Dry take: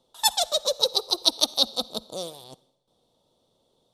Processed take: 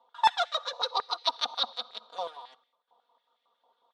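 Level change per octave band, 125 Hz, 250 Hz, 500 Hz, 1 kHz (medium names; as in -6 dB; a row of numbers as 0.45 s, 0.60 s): under -15 dB, -19.0 dB, -9.0 dB, +4.0 dB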